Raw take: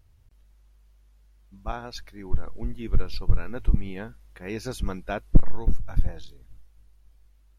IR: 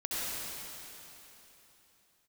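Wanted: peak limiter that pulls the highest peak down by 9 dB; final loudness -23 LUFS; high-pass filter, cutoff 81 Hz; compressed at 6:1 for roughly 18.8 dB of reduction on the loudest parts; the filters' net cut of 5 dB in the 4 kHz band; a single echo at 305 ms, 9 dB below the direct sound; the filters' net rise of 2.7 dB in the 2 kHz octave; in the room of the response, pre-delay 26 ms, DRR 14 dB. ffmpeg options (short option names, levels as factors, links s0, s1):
-filter_complex "[0:a]highpass=81,equalizer=f=2000:t=o:g=5.5,equalizer=f=4000:t=o:g=-7.5,acompressor=threshold=0.0112:ratio=6,alimiter=level_in=3.16:limit=0.0631:level=0:latency=1,volume=0.316,aecho=1:1:305:0.355,asplit=2[s0][s1];[1:a]atrim=start_sample=2205,adelay=26[s2];[s1][s2]afir=irnorm=-1:irlink=0,volume=0.0944[s3];[s0][s3]amix=inputs=2:normalize=0,volume=15.8"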